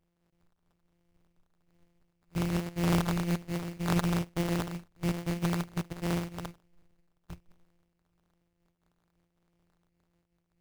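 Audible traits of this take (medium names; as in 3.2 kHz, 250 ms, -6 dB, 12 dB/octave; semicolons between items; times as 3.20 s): a buzz of ramps at a fixed pitch in blocks of 256 samples; phasing stages 2, 1.2 Hz, lowest notch 560–1500 Hz; aliases and images of a low sample rate 2.5 kHz, jitter 20%; random flutter of the level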